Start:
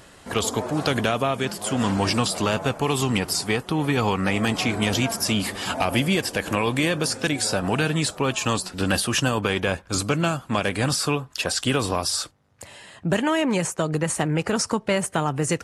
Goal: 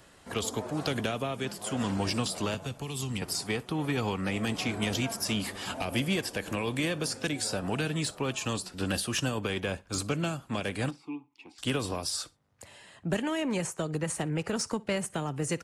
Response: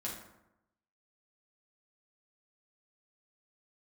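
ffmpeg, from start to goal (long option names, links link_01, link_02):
-filter_complex "[0:a]acrossover=split=300|630|1900[link_01][link_02][link_03][link_04];[link_03]alimiter=limit=-24dB:level=0:latency=1:release=395[link_05];[link_01][link_02][link_05][link_04]amix=inputs=4:normalize=0,asettb=1/sr,asplit=3[link_06][link_07][link_08];[link_06]atrim=end=2.544[link_09];[link_07]atrim=start=2.54:end=3.22,asetpts=PTS-STARTPTS,afade=type=in:duration=0.004:curve=qsin,afade=type=out:start_time=0.676:duration=0.004:curve=qsin,acrossover=split=190|3000[link_10][link_11][link_12];[link_11]acompressor=threshold=-32dB:ratio=6[link_13];[link_10][link_13][link_12]amix=inputs=3:normalize=0[link_14];[link_08]atrim=start=3.216[link_15];[link_09][link_14]acrossfade=duration=0.004:curve1=hsin:curve2=qsin[link_16];[link_16][link_15]acrossfade=duration=0.004:curve1=qsin:curve2=hsin,aeval=exprs='0.398*(cos(1*acos(clip(val(0)/0.398,-1,1)))-cos(1*PI/2))+0.0447*(cos(3*acos(clip(val(0)/0.398,-1,1)))-cos(3*PI/2))':channel_layout=same,asplit=3[link_17][link_18][link_19];[link_17]afade=type=out:start_time=10.89:duration=0.02[link_20];[link_18]asplit=3[link_21][link_22][link_23];[link_21]bandpass=frequency=300:width_type=q:width=8,volume=0dB[link_24];[link_22]bandpass=frequency=870:width_type=q:width=8,volume=-6dB[link_25];[link_23]bandpass=frequency=2240:width_type=q:width=8,volume=-9dB[link_26];[link_24][link_25][link_26]amix=inputs=3:normalize=0,afade=type=in:start_time=10.89:duration=0.02,afade=type=out:start_time=11.58:duration=0.02[link_27];[link_19]afade=type=in:start_time=11.58:duration=0.02[link_28];[link_20][link_27][link_28]amix=inputs=3:normalize=0,aecho=1:1:61|122:0.0668|0.0147,volume=-4.5dB"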